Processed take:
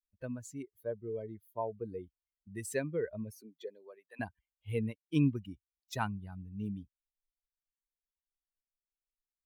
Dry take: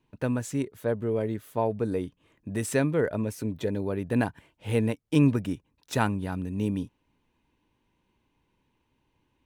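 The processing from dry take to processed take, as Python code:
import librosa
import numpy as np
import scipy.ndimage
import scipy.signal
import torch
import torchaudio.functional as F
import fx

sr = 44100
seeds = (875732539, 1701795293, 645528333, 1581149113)

y = fx.bin_expand(x, sr, power=2.0)
y = fx.highpass(y, sr, hz=fx.line((3.3, 230.0), (4.19, 750.0)), slope=24, at=(3.3, 4.19), fade=0.02)
y = F.gain(torch.from_numpy(y), -5.5).numpy()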